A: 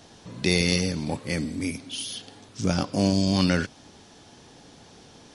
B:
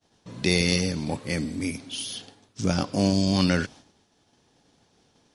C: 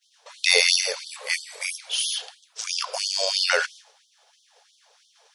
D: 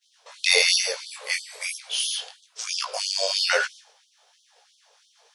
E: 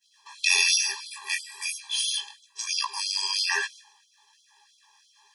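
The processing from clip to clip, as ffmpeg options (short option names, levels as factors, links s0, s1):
-af "agate=range=0.0224:threshold=0.01:ratio=3:detection=peak"
-af "afftfilt=real='re*gte(b*sr/1024,410*pow(3100/410,0.5+0.5*sin(2*PI*3*pts/sr)))':imag='im*gte(b*sr/1024,410*pow(3100/410,0.5+0.5*sin(2*PI*3*pts/sr)))':win_size=1024:overlap=0.75,volume=2.51"
-af "flanger=delay=15:depth=6.1:speed=1.1,volume=1.33"
-af "afftfilt=real='re*eq(mod(floor(b*sr/1024/390),2),0)':imag='im*eq(mod(floor(b*sr/1024/390),2),0)':win_size=1024:overlap=0.75,volume=1.41"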